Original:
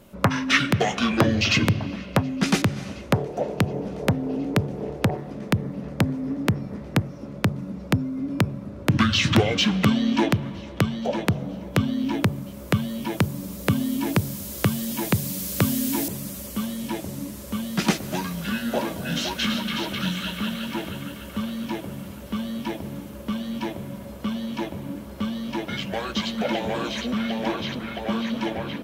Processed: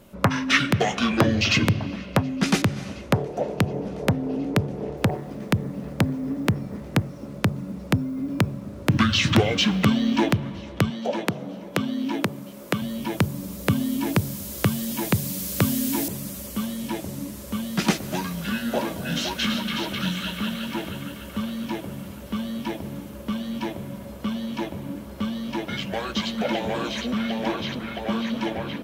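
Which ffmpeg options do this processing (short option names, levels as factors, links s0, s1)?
-filter_complex "[0:a]asettb=1/sr,asplit=3[s0][s1][s2];[s0]atrim=end=4.974[s3];[s1]atrim=start=4.97:end=10.35,asetpts=PTS-STARTPTS,afade=t=in:d=0.004:c=qsin,afade=t=out:st=5.376:d=0.004:c=qsin,acrusher=bits=8:mix=0:aa=0.5[s4];[s2]atrim=start=10.346[s5];[s3][s4]acrossfade=d=0.004:c1=hsin:c2=qsin[s6];[s6][s5]acrossfade=d=0.004:c1=qsin:c2=hsin,asettb=1/sr,asplit=3[s7][s8][s9];[s7]atrim=end=10.904[s10];[s8]atrim=start=10.9:end=12.82,asetpts=PTS-STARTPTS,afade=t=in:d=0.004:c=qsin,afade=t=out:st=1.916:d=0.004:c=qsin,highpass=210[s11];[s9]atrim=start=12.816[s12];[s10][s11]acrossfade=d=0.004:c1=hsin:c2=qsin[s13];[s13][s12]acrossfade=d=0.004:c1=qsin:c2=hsin"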